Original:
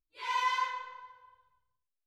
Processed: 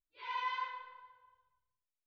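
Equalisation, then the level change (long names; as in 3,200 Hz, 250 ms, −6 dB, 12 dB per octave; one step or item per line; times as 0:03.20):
low-pass filter 4,100 Hz 24 dB per octave
−7.0 dB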